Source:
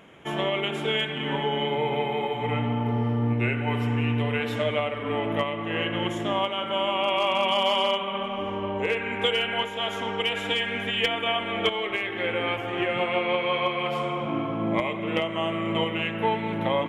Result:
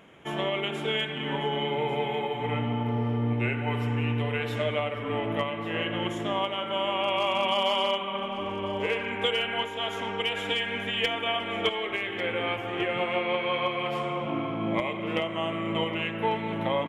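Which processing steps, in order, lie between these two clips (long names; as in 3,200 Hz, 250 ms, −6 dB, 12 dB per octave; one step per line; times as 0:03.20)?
single-tap delay 1,145 ms −14.5 dB
level −2.5 dB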